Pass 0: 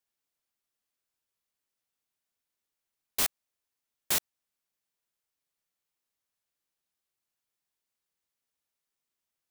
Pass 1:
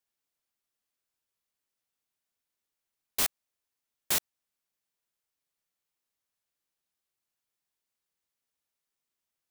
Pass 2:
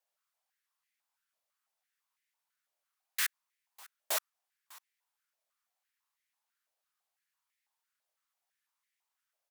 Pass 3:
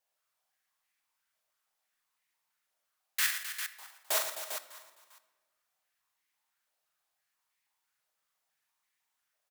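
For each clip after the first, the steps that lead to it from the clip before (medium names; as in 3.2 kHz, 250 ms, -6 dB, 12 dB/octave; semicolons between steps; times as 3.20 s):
no audible change
valve stage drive 27 dB, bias 0.4; delay 600 ms -22 dB; step-sequenced high-pass 6 Hz 630–2000 Hz
on a send: multi-tap echo 41/115/168/260/317/399 ms -4.5/-9/-16.5/-11/-19/-8 dB; on the sum: simulated room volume 1200 m³, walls mixed, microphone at 0.51 m; trim +1.5 dB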